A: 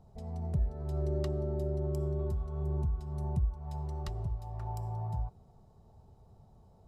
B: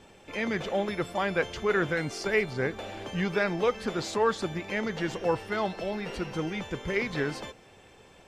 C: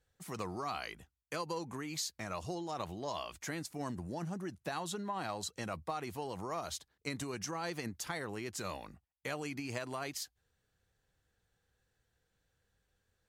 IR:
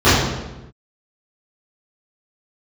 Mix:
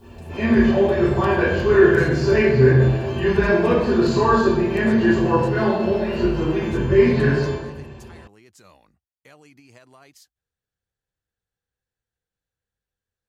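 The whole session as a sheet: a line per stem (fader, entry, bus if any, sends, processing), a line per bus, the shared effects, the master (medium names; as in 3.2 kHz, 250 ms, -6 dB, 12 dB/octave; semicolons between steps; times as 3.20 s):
+2.0 dB, 0.00 s, no send, word length cut 12-bit, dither triangular
-17.0 dB, 0.00 s, send -4.5 dB, rippled EQ curve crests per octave 1.4, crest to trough 8 dB
-10.0 dB, 0.00 s, no send, none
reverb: on, RT60 1.0 s, pre-delay 3 ms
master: none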